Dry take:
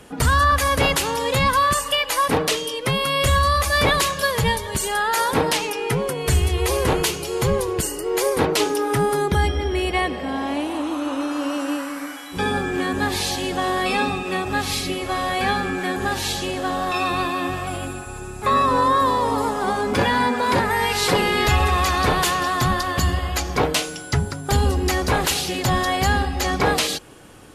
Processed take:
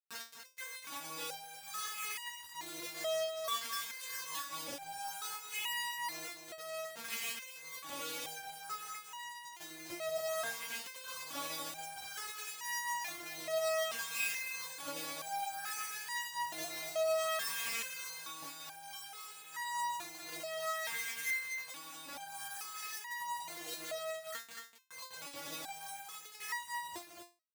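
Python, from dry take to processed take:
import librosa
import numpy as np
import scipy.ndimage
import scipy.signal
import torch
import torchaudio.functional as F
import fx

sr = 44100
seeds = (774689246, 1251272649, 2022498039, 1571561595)

y = fx.low_shelf(x, sr, hz=180.0, db=3.0)
y = fx.hum_notches(y, sr, base_hz=60, count=7)
y = fx.over_compress(y, sr, threshold_db=-27.0, ratio=-1.0)
y = fx.wah_lfo(y, sr, hz=0.58, low_hz=500.0, high_hz=2300.0, q=3.9)
y = fx.lpc_monotone(y, sr, seeds[0], pitch_hz=160.0, order=8)
y = fx.quant_dither(y, sr, seeds[1], bits=6, dither='none')
y = scipy.signal.sosfilt(scipy.signal.butter(2, 110.0, 'highpass', fs=sr, output='sos'), y)
y = fx.high_shelf(y, sr, hz=2600.0, db=9.0)
y = y + 10.0 ** (-7.0 / 20.0) * np.pad(y, (int(245 * sr / 1000.0), 0))[:len(y)]
y = fx.resonator_held(y, sr, hz=2.3, low_hz=230.0, high_hz=960.0)
y = F.gain(torch.from_numpy(y), 6.5).numpy()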